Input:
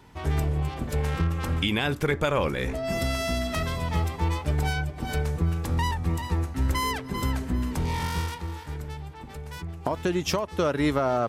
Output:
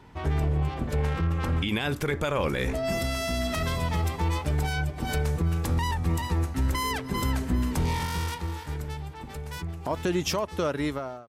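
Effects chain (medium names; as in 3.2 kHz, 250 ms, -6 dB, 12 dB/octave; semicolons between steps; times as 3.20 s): fade out at the end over 0.90 s; treble shelf 4.8 kHz -9 dB, from 1.69 s +2.5 dB; peak limiter -18.5 dBFS, peak gain reduction 8 dB; trim +1.5 dB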